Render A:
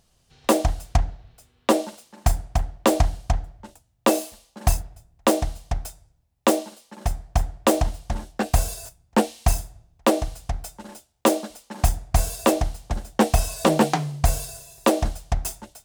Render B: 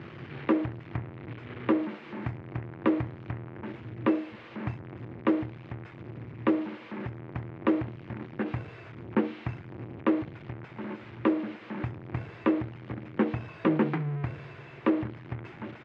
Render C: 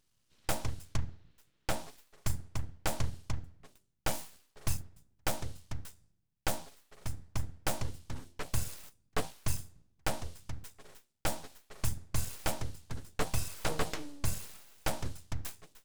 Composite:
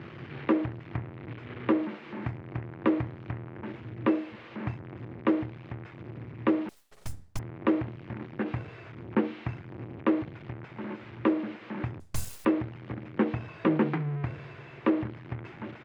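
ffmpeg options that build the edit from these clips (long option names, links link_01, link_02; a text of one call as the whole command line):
ffmpeg -i take0.wav -i take1.wav -i take2.wav -filter_complex "[2:a]asplit=2[link_01][link_02];[1:a]asplit=3[link_03][link_04][link_05];[link_03]atrim=end=6.692[link_06];[link_01]atrim=start=6.688:end=7.392[link_07];[link_04]atrim=start=7.388:end=12.002[link_08];[link_02]atrim=start=11.998:end=12.452[link_09];[link_05]atrim=start=12.448[link_10];[link_06][link_07]acrossfade=duration=0.004:curve1=hsin:curve2=hsin[link_11];[link_11][link_08]acrossfade=duration=0.004:curve1=hsin:curve2=hsin[link_12];[link_12][link_09]acrossfade=duration=0.004:curve1=hsin:curve2=hsin[link_13];[link_13][link_10]acrossfade=duration=0.004:curve1=hsin:curve2=hsin" out.wav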